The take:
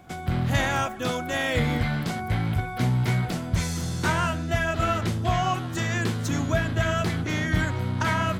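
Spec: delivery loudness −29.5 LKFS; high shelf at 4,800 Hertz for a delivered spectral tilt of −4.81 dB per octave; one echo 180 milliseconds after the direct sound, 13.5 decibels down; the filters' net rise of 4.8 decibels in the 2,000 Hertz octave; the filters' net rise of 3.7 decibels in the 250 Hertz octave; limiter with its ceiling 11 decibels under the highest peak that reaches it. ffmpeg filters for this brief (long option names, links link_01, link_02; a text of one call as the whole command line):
ffmpeg -i in.wav -af "equalizer=frequency=250:width_type=o:gain=5,equalizer=frequency=2000:width_type=o:gain=4.5,highshelf=frequency=4800:gain=8.5,alimiter=limit=-19dB:level=0:latency=1,aecho=1:1:180:0.211,volume=-2.5dB" out.wav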